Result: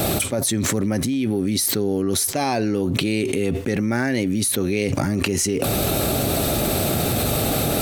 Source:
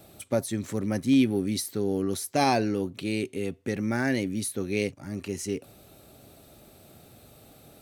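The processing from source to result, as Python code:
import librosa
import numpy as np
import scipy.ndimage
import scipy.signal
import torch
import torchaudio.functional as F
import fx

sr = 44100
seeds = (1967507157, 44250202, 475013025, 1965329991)

y = fx.env_flatten(x, sr, amount_pct=100)
y = y * librosa.db_to_amplitude(-3.5)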